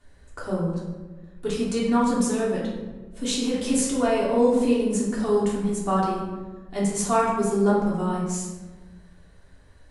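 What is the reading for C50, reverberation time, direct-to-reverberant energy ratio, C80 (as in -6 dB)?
1.5 dB, 1.3 s, -7.0 dB, 4.5 dB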